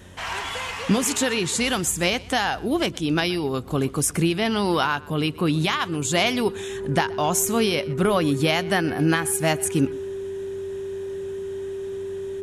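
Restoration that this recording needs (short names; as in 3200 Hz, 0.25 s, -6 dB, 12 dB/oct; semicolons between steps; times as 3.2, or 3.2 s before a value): de-hum 90.8 Hz, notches 5; notch 390 Hz, Q 30; inverse comb 0.124 s -22 dB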